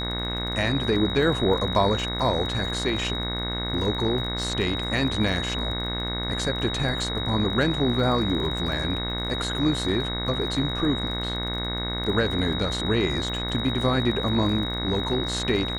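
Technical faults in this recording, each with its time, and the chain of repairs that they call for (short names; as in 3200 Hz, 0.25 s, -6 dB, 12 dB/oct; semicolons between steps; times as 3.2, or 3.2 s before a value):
buzz 60 Hz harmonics 37 -31 dBFS
crackle 30/s -33 dBFS
tone 3800 Hz -30 dBFS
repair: de-click; de-hum 60 Hz, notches 37; notch 3800 Hz, Q 30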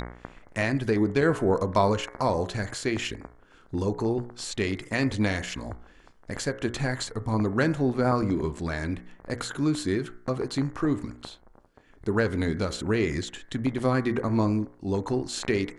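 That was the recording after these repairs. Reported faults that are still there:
none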